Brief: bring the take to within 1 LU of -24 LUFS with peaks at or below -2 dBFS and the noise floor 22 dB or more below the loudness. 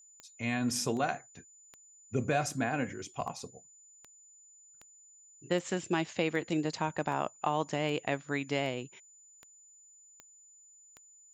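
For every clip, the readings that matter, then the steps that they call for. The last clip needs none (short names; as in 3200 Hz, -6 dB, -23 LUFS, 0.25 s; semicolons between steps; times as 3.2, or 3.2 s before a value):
clicks 15; steady tone 7000 Hz; tone level -56 dBFS; loudness -33.5 LUFS; peak -16.0 dBFS; loudness target -24.0 LUFS
-> de-click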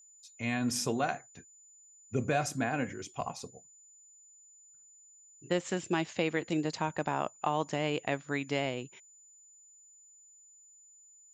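clicks 0; steady tone 7000 Hz; tone level -56 dBFS
-> notch 7000 Hz, Q 30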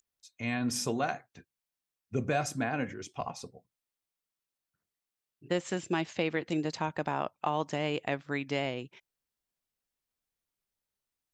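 steady tone none; loudness -33.5 LUFS; peak -16.0 dBFS; loudness target -24.0 LUFS
-> gain +9.5 dB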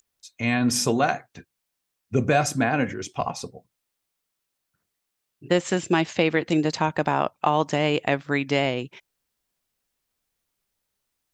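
loudness -24.0 LUFS; peak -6.5 dBFS; noise floor -81 dBFS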